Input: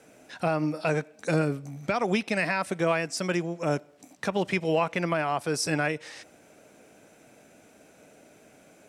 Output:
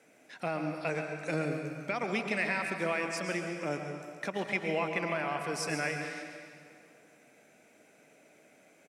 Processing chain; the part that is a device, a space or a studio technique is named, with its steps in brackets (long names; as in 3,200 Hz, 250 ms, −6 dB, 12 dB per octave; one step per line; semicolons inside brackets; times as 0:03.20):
PA in a hall (high-pass filter 150 Hz 12 dB per octave; parametric band 2,100 Hz +7.5 dB 0.48 octaves; single-tap delay 138 ms −11 dB; convolution reverb RT60 2.3 s, pre-delay 106 ms, DRR 5 dB)
level −8 dB